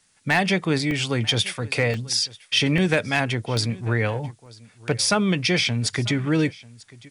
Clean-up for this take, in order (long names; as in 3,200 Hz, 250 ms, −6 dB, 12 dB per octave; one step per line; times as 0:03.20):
clipped peaks rebuilt −9.5 dBFS
repair the gap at 0:00.91/0:01.94/0:02.78/0:03.57/0:04.46/0:05.88, 1.6 ms
downward expander −41 dBFS, range −21 dB
echo removal 941 ms −22 dB